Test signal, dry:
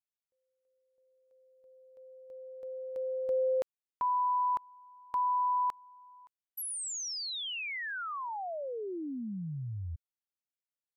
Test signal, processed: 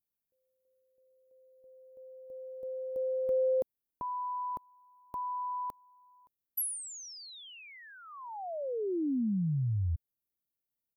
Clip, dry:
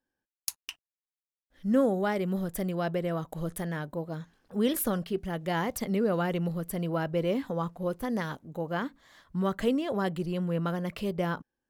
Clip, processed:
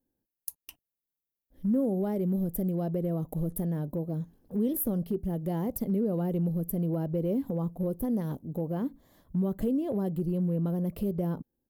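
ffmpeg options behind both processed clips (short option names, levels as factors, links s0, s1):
-af "firequalizer=gain_entry='entry(250,0);entry(1400,-22);entry(8200,-13);entry(12000,1)':delay=0.05:min_phase=1,acompressor=threshold=0.0224:ratio=2.5:attack=0.3:release=401:knee=1:detection=peak,volume=2.37"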